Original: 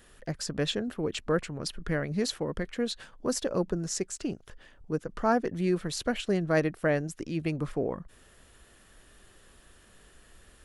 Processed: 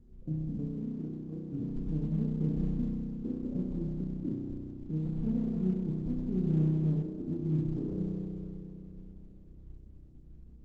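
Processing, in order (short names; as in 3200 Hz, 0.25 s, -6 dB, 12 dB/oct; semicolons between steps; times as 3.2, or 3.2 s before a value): bin magnitudes rounded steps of 15 dB; compressor 3:1, threshold -29 dBFS, peak gain reduction 7.5 dB; inverse Chebyshev low-pass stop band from 1800 Hz, stop band 80 dB; low shelf 230 Hz +4 dB; limiter -30 dBFS, peak gain reduction 8.5 dB; 0.75–1.53 tilt +4 dB/oct; 5.44–5.92 gate -39 dBFS, range -26 dB; spring tank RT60 3.1 s, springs 32 ms, chirp 25 ms, DRR -4 dB; gain +1.5 dB; Opus 12 kbps 48000 Hz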